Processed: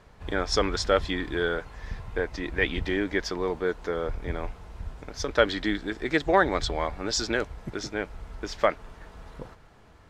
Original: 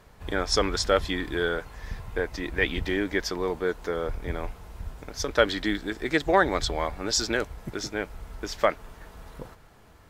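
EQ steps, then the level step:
high-frequency loss of the air 52 metres
0.0 dB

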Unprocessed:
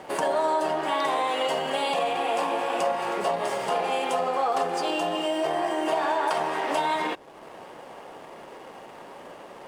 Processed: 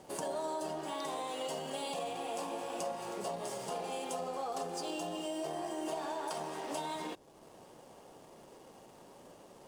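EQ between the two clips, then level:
drawn EQ curve 120 Hz 0 dB, 2,000 Hz −14 dB, 6,200 Hz +1 dB
−4.5 dB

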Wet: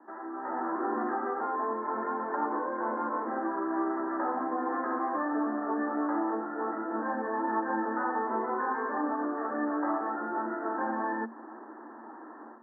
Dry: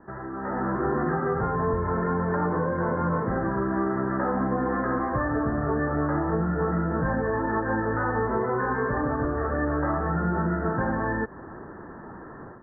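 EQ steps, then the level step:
Chebyshev high-pass with heavy ripple 220 Hz, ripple 9 dB
0.0 dB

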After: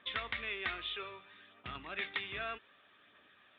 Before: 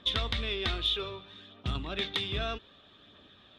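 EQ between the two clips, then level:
transistor ladder low-pass 2,600 Hz, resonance 40%
high-frequency loss of the air 270 metres
spectral tilt +4 dB per octave
+3.5 dB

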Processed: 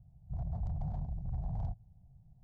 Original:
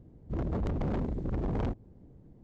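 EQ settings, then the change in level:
drawn EQ curve 150 Hz 0 dB, 310 Hz −30 dB, 510 Hz −23 dB, 720 Hz −2 dB, 1,200 Hz −20 dB, 2,600 Hz −24 dB, 4,400 Hz −13 dB
−3.0 dB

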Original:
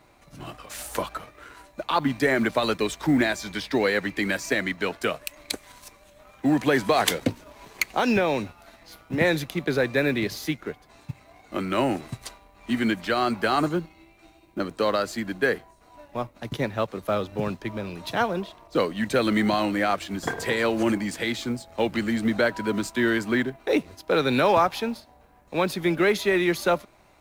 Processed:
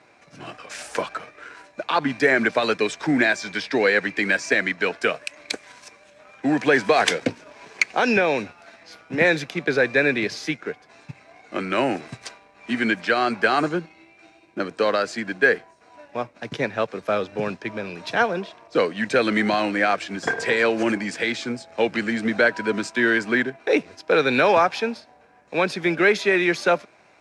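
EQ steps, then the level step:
loudspeaker in its box 140–8,600 Hz, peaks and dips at 460 Hz +5 dB, 710 Hz +3 dB, 1,600 Hz +8 dB, 2,400 Hz +7 dB, 5,300 Hz +5 dB
0.0 dB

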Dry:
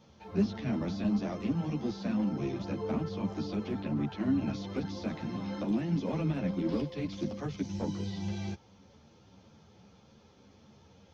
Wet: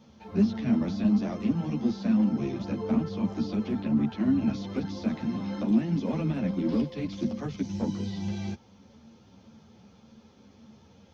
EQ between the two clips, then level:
parametric band 230 Hz +11 dB 0.23 octaves
+1.5 dB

